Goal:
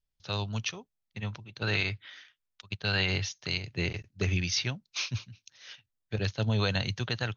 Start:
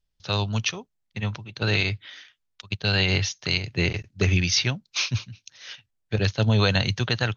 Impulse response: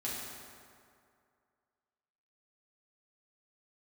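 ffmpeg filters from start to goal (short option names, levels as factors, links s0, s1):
-filter_complex "[0:a]asettb=1/sr,asplit=3[s0][s1][s2];[s0]atrim=end=1.404[s3];[s1]atrim=start=1.4:end=3.12,asetpts=PTS-STARTPTS,afade=t=in:d=0.004:c=qsin,afade=t=out:st=1.716:d=0.004:c=qsin,adynamicequalizer=threshold=0.01:dfrequency=1400:dqfactor=0.81:tfrequency=1400:tqfactor=0.81:attack=5:release=100:ratio=0.375:range=2.5:mode=boostabove:tftype=bell[s4];[s2]atrim=start=3.116[s5];[s3][s4]acrossfade=d=0.004:c1=hsin:c2=qsin[s6];[s6][s5]acrossfade=d=0.004:c1=qsin:c2=hsin,volume=0.422"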